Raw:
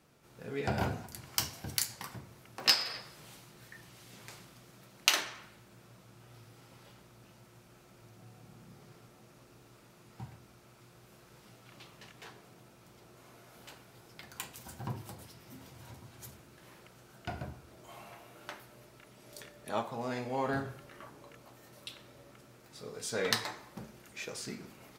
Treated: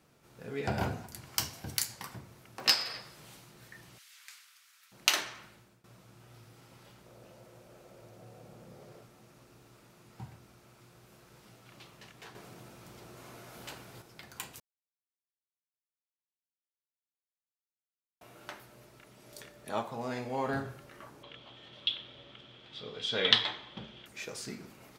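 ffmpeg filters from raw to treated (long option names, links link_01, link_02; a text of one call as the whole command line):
ffmpeg -i in.wav -filter_complex "[0:a]asettb=1/sr,asplit=3[link_01][link_02][link_03];[link_01]atrim=end=3.984[link_04];[link_02]atrim=start=3.98:end=4.92,asetpts=PTS-STARTPTS,afade=type=in:duration=0.004:curve=qsin,afade=type=out:start_time=0.936:duration=0.004:curve=qsin,highpass=frequency=1400:width=0.5412,highpass=frequency=1400:width=1.3066[link_05];[link_03]atrim=start=4.916[link_06];[link_04][link_05]acrossfade=duration=0.004:curve1=hsin:curve2=qsin[link_07];[link_07][link_06]acrossfade=duration=0.004:curve1=qsin:curve2=hsin,asettb=1/sr,asplit=3[link_08][link_09][link_10];[link_08]atrim=end=7.064[link_11];[link_09]atrim=start=7.06:end=9.03,asetpts=PTS-STARTPTS,afade=type=in:duration=0.004:curve=qsin,afade=type=out:start_time=1.966:duration=0.004:curve=qsin,equalizer=frequency=540:width=1.8:gain=12[link_12];[link_10]atrim=start=9.026[link_13];[link_11][link_12]acrossfade=duration=0.004:curve1=hsin:curve2=qsin[link_14];[link_14][link_13]acrossfade=duration=0.004:curve1=qsin:curve2=hsin,asettb=1/sr,asplit=3[link_15][link_16][link_17];[link_15]atrim=end=21.234[link_18];[link_16]atrim=start=21.23:end=24.06,asetpts=PTS-STARTPTS,afade=type=in:duration=0.004:curve=qsin,afade=type=out:start_time=2.826:duration=0.004:curve=qsin,lowpass=frequency=3300:width_type=q:width=13[link_19];[link_17]atrim=start=24.056[link_20];[link_18][link_19]acrossfade=duration=0.004:curve1=hsin:curve2=qsin[link_21];[link_21][link_20]acrossfade=duration=0.004:curve1=qsin:curve2=hsin,asplit=6[link_22][link_23][link_24][link_25][link_26][link_27];[link_22]atrim=end=5.84,asetpts=PTS-STARTPTS,afade=type=out:start_time=5.42:duration=0.42:curve=qsin:silence=0.125893[link_28];[link_23]atrim=start=5.84:end=12.352,asetpts=PTS-STARTPTS,afade=type=in:duration=0.004:curve=hsin:silence=0.125893[link_29];[link_24]atrim=start=12.348:end=14.022,asetpts=PTS-STARTPTS,volume=6.5dB[link_30];[link_25]atrim=start=14.018:end=14.6,asetpts=PTS-STARTPTS,afade=type=out:start_time=0.578:duration=0.004:curve=hsin[link_31];[link_26]atrim=start=14.6:end=18.21,asetpts=PTS-STARTPTS,volume=0[link_32];[link_27]atrim=start=18.21,asetpts=PTS-STARTPTS,afade=type=in:duration=0.004:curve=hsin[link_33];[link_28][link_29]concat=n=2:v=0:a=1[link_34];[link_34][link_30]acrossfade=duration=0.004:curve1=hsin:curve2=hsin[link_35];[link_31][link_32][link_33]concat=n=3:v=0:a=1[link_36];[link_35][link_36]acrossfade=duration=0.004:curve1=hsin:curve2=hsin" out.wav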